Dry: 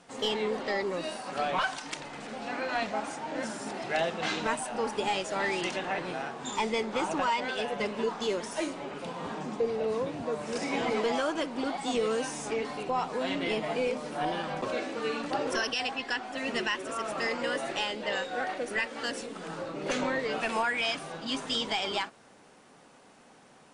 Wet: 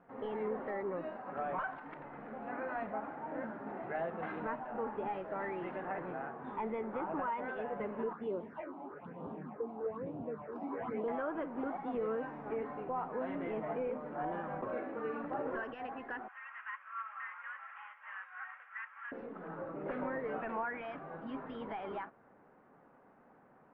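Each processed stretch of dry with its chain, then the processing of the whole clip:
0:08.13–0:11.08: high-pass filter 77 Hz + all-pass phaser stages 6, 1.1 Hz, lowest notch 120–1,900 Hz
0:16.28–0:19.12: variable-slope delta modulation 16 kbit/s + Butterworth high-pass 1,100 Hz + comb filter 3.7 ms, depth 36%
whole clip: brickwall limiter −22.5 dBFS; inverse Chebyshev low-pass filter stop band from 8,800 Hz, stop band 80 dB; level −5.5 dB

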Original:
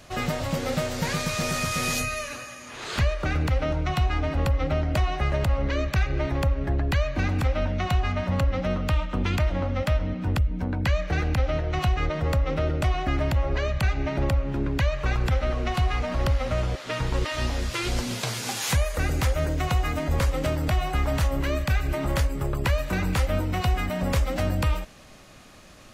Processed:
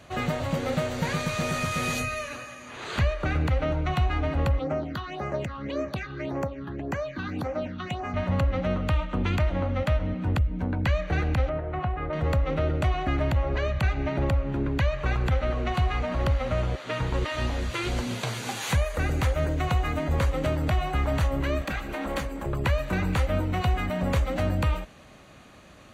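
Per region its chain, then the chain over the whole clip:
0:04.59–0:08.14: high-pass filter 190 Hz + all-pass phaser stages 6, 1.8 Hz, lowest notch 570–3,700 Hz
0:11.49–0:12.13: low-pass filter 1,300 Hz + spectral tilt +1.5 dB per octave
0:21.61–0:22.46: lower of the sound and its delayed copy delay 3.7 ms + parametric band 92 Hz −14.5 dB 1.2 octaves
whole clip: high-pass filter 46 Hz; high-shelf EQ 5,000 Hz −8.5 dB; notch filter 5,200 Hz, Q 6.1

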